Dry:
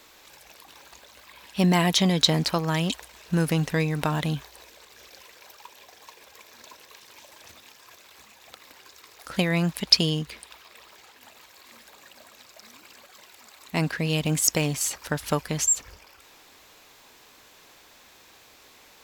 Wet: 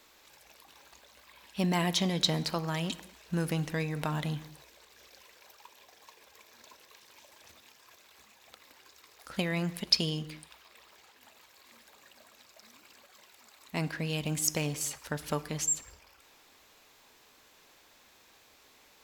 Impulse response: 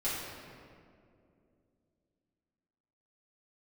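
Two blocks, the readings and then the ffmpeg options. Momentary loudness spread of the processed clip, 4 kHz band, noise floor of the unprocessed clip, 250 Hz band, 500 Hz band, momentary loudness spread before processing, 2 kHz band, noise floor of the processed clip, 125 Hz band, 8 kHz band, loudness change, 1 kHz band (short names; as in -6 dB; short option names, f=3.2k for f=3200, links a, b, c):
12 LU, -7.5 dB, -54 dBFS, -8.0 dB, -7.5 dB, 12 LU, -7.5 dB, -61 dBFS, -7.5 dB, -7.5 dB, -7.5 dB, -7.5 dB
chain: -filter_complex "[0:a]asplit=2[a][b];[1:a]atrim=start_sample=2205,afade=t=out:st=0.29:d=0.01,atrim=end_sample=13230[c];[b][c]afir=irnorm=-1:irlink=0,volume=-18.5dB[d];[a][d]amix=inputs=2:normalize=0,volume=-8dB"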